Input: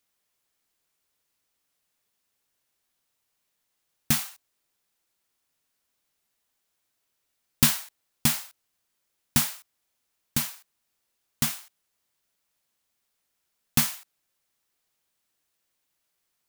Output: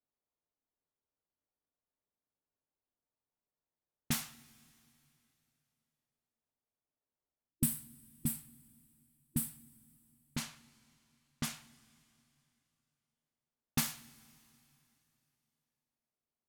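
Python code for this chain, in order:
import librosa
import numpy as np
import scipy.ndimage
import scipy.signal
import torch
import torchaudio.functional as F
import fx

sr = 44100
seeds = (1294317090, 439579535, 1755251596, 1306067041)

y = fx.spec_box(x, sr, start_s=7.49, length_s=2.26, low_hz=330.0, high_hz=7600.0, gain_db=-16)
y = fx.env_lowpass(y, sr, base_hz=840.0, full_db=-21.0)
y = fx.rev_double_slope(y, sr, seeds[0], early_s=0.4, late_s=3.1, knee_db=-18, drr_db=8.5)
y = y * 10.0 ** (-9.0 / 20.0)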